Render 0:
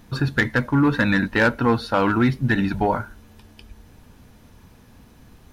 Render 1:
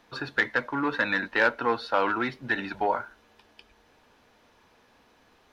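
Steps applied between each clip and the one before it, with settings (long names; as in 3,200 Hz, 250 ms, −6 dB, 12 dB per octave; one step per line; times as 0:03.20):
three-way crossover with the lows and the highs turned down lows −20 dB, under 360 Hz, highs −14 dB, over 5,600 Hz
level −3 dB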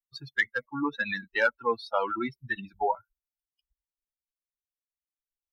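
spectral dynamics exaggerated over time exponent 3
level +2.5 dB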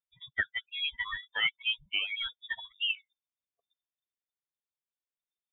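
voice inversion scrambler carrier 3,600 Hz
level −4.5 dB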